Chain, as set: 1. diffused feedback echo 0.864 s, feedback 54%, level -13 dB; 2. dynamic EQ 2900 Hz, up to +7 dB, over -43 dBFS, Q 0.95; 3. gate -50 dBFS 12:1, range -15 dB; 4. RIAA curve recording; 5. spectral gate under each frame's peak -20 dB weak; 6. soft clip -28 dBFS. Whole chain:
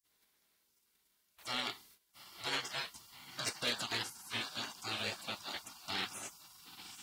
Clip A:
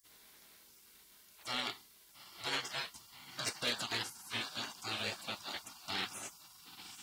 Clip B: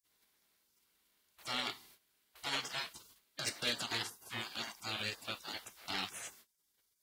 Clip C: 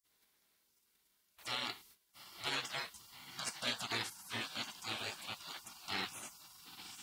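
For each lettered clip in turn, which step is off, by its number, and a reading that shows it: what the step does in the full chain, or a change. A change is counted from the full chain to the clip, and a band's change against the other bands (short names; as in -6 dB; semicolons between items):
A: 3, momentary loudness spread change +7 LU; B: 1, momentary loudness spread change -4 LU; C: 2, crest factor change +1.5 dB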